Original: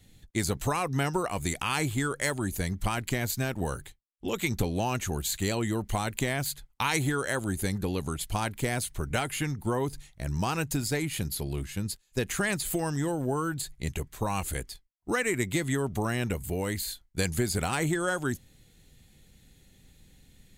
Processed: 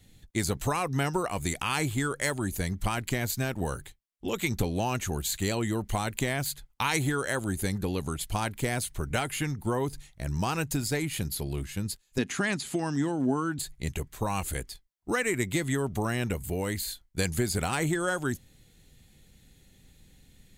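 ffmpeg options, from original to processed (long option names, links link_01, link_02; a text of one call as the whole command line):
ffmpeg -i in.wav -filter_complex "[0:a]asettb=1/sr,asplit=3[link_01][link_02][link_03];[link_01]atrim=end=12.184[link_04];[link_02]atrim=start=12.18:end=13.59,asetpts=PTS-STARTPTS,afade=type=in:duration=0.004:curve=qsin,afade=type=out:start_time=1.406:duration=0.004:curve=qsin,highpass=130,equalizer=frequency=260:width_type=q:width=4:gain=9,equalizer=frequency=510:width_type=q:width=4:gain=-6,equalizer=frequency=8300:width_type=q:width=4:gain=-7,lowpass=frequency=9100:width=0.5412,lowpass=frequency=9100:width=1.3066[link_05];[link_03]atrim=start=13.586[link_06];[link_04][link_05]acrossfade=duration=0.004:curve1=hsin:curve2=qsin[link_07];[link_07][link_06]acrossfade=duration=0.004:curve1=qsin:curve2=hsin" out.wav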